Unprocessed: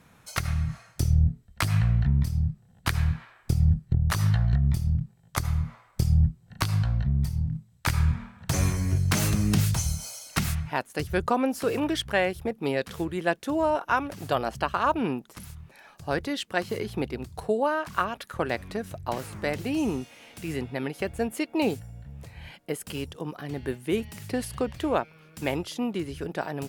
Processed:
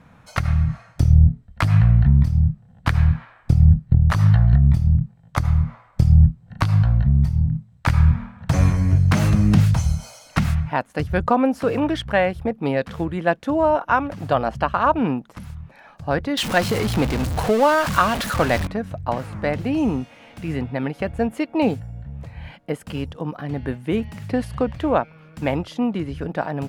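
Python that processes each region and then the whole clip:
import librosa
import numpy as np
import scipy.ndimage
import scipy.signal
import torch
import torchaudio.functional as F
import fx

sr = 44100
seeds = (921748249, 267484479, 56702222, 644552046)

y = fx.chain(x, sr, fx.zero_step(step_db=-27.5),
    fx.high_shelf(hz=3300.0, db=11.5), at=(16.37, 18.67))
y = fx.lowpass(y, sr, hz=1300.0, slope=6)
y = fx.peak_eq(y, sr, hz=380.0, db=-9.0, octaves=0.37)
y = y * 10.0 ** (8.5 / 20.0)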